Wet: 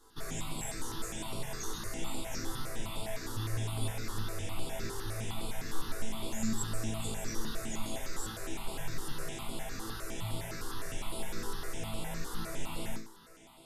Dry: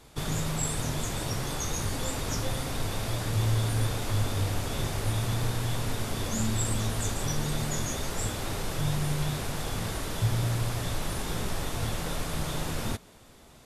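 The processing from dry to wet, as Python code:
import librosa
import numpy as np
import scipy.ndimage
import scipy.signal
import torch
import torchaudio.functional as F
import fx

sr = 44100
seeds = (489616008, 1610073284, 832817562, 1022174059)

p1 = fx.peak_eq(x, sr, hz=120.0, db=-14.5, octaves=0.55)
p2 = fx.notch(p1, sr, hz=530.0, q=12.0)
p3 = fx.resonator_bank(p2, sr, root=45, chord='minor', decay_s=0.44)
p4 = p3 + fx.echo_thinned(p3, sr, ms=913, feedback_pct=76, hz=160.0, wet_db=-20.5, dry=0)
p5 = fx.phaser_held(p4, sr, hz=9.8, low_hz=640.0, high_hz=6000.0)
y = p5 * 10.0 ** (12.0 / 20.0)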